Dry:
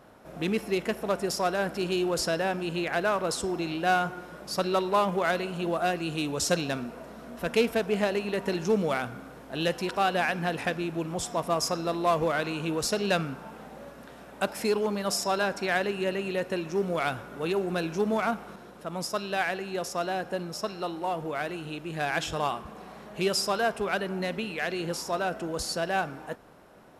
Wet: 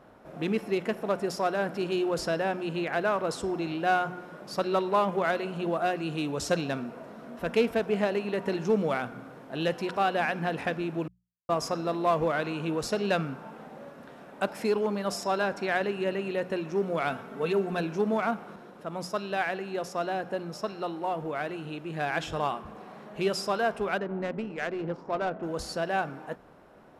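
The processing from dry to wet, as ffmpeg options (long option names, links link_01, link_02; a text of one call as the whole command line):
ffmpeg -i in.wav -filter_complex "[0:a]asettb=1/sr,asplit=3[link_01][link_02][link_03];[link_01]atrim=end=17.104[link_04];[link_02]atrim=start=17.1:end=17.8,asetpts=PTS-STARTPTS,afade=type=in:duration=0.004:curve=qsin,afade=type=out:start_time=0.696:duration=0.004:curve=qsin,aecho=1:1:4.5:0.65,atrim=end_sample=30870[link_05];[link_03]atrim=start=17.796[link_06];[link_04][link_05]acrossfade=duration=0.004:curve1=hsin:curve2=qsin[link_07];[link_07][link_06]acrossfade=duration=0.004:curve1=qsin:curve2=hsin,asettb=1/sr,asplit=3[link_08][link_09][link_10];[link_08]atrim=end=23.984[link_11];[link_09]atrim=start=23.98:end=25.43,asetpts=PTS-STARTPTS,afade=type=in:duration=0.004:curve=qsin,afade=type=out:start_time=1.446:duration=0.004:curve=qsin,adynamicsmooth=sensitivity=2.5:basefreq=910[link_12];[link_10]atrim=start=25.426[link_13];[link_11][link_12]acrossfade=duration=0.004:curve1=hsin:curve2=qsin[link_14];[link_14][link_13]acrossfade=duration=0.004:curve1=qsin:curve2=hsin,asplit=3[link_15][link_16][link_17];[link_15]atrim=end=11.08,asetpts=PTS-STARTPTS,afade=type=out:start_time=11.076:duration=0.004:curve=hsin[link_18];[link_16]atrim=start=11.08:end=11.49,asetpts=PTS-STARTPTS,volume=0[link_19];[link_17]atrim=start=11.49,asetpts=PTS-STARTPTS,afade=type=in:duration=0.004:curve=hsin[link_20];[link_18][link_19][link_20]concat=n=3:v=0:a=1,highshelf=frequency=3900:gain=-10,bandreject=frequency=60:width_type=h:width=6,bandreject=frequency=120:width_type=h:width=6,bandreject=frequency=180:width_type=h:width=6" out.wav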